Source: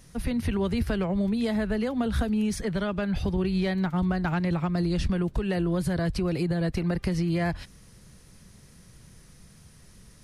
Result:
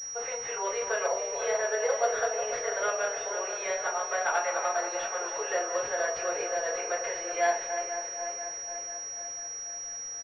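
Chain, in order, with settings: regenerating reverse delay 0.245 s, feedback 75%, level -8.5 dB; steep high-pass 480 Hz 48 dB/oct; crackle 320/s -45 dBFS; on a send: echo 0.731 s -21.5 dB; on the sum: shoebox room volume 150 m³, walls furnished, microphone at 4 m; pulse-width modulation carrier 5700 Hz; gain -5 dB

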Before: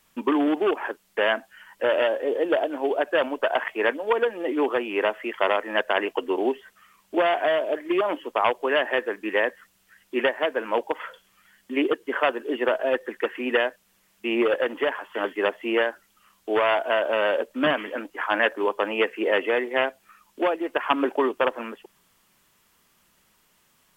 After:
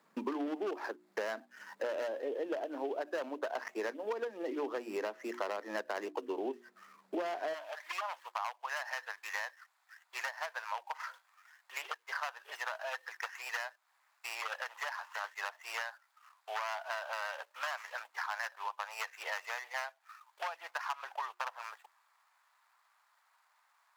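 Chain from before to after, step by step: median filter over 15 samples; steep high-pass 170 Hz 36 dB/oct, from 7.53 s 780 Hz; notches 60/120/180/240/300/360 Hz; compressor 4:1, threshold -38 dBFS, peak gain reduction 17.5 dB; gain +1 dB

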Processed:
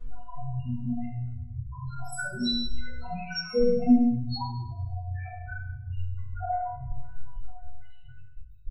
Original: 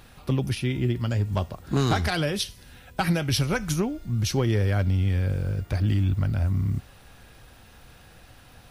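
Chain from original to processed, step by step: random spectral dropouts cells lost 67%; ripple EQ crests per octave 2, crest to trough 11 dB; in parallel at -2.5 dB: compressor, threshold -33 dBFS, peak gain reduction 15.5 dB; on the sum: fuzz box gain 46 dB, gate -49 dBFS; loudest bins only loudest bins 2; metallic resonator 240 Hz, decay 0.61 s, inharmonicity 0.002; feedback echo 0.101 s, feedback 52%, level -15 dB; shoebox room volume 160 m³, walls mixed, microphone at 5.3 m; mismatched tape noise reduction decoder only; gain -4.5 dB

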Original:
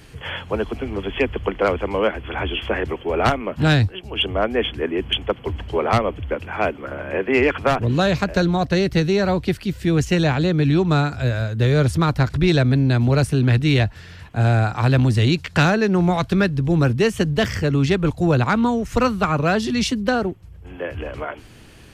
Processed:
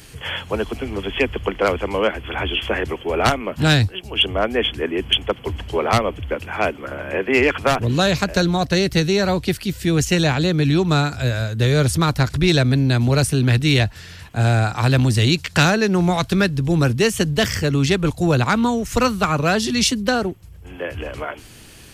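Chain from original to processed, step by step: high shelf 4000 Hz +12 dB

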